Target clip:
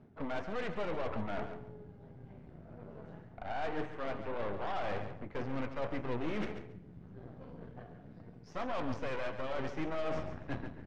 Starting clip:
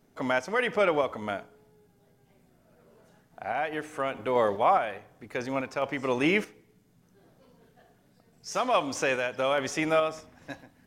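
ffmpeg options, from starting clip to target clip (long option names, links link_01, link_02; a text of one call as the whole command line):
ffmpeg -i in.wav -filter_complex "[0:a]highpass=61,aemphasis=mode=reproduction:type=bsi,areverse,acompressor=threshold=-37dB:ratio=16,areverse,asoftclip=type=tanh:threshold=-31.5dB,flanger=delay=8:depth=6.5:regen=64:speed=1.8:shape=sinusoidal,aeval=exprs='0.02*(cos(1*acos(clip(val(0)/0.02,-1,1)))-cos(1*PI/2))+0.00224*(cos(5*acos(clip(val(0)/0.02,-1,1)))-cos(5*PI/2))+0.00501*(cos(8*acos(clip(val(0)/0.02,-1,1)))-cos(8*PI/2))':channel_layout=same,adynamicsmooth=sensitivity=2:basefreq=3100,asplit=2[link_01][link_02];[link_02]aecho=0:1:139|278:0.316|0.0538[link_03];[link_01][link_03]amix=inputs=2:normalize=0,volume=5.5dB" out.wav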